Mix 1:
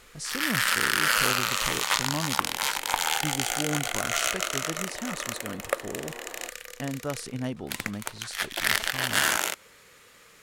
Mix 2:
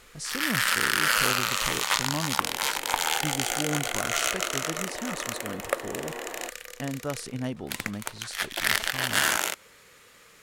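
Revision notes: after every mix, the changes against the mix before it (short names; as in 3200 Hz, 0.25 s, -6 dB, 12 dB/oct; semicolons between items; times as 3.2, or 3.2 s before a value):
second sound +5.0 dB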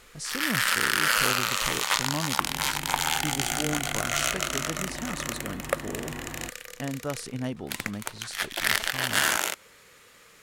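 second sound: remove resonant high-pass 500 Hz, resonance Q 3.8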